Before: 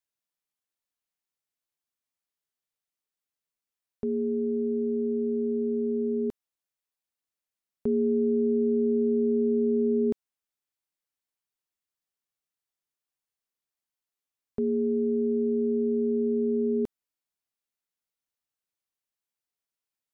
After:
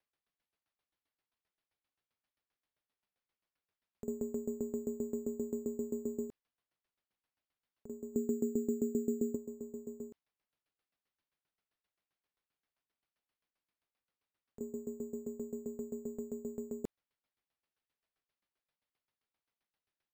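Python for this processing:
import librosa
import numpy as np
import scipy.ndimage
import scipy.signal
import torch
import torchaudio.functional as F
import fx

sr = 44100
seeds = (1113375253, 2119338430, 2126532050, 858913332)

y = fx.peak_eq(x, sr, hz=490.0, db=-8.0, octaves=2.9, at=(8.13, 9.35), fade=0.02)
y = fx.over_compress(y, sr, threshold_db=-30.0, ratio=-0.5)
y = np.repeat(y[::6], 6)[:len(y)]
y = fx.tremolo_decay(y, sr, direction='decaying', hz=7.6, depth_db=19)
y = y * librosa.db_to_amplitude(-1.5)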